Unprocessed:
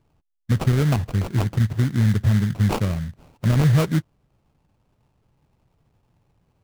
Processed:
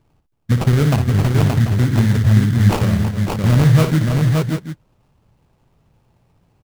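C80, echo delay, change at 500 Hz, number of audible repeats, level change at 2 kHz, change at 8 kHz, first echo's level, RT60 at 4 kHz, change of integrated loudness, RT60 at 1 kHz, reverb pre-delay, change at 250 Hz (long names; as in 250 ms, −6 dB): no reverb audible, 58 ms, +6.5 dB, 4, +6.5 dB, +6.5 dB, −8.5 dB, no reverb audible, +5.5 dB, no reverb audible, no reverb audible, +6.0 dB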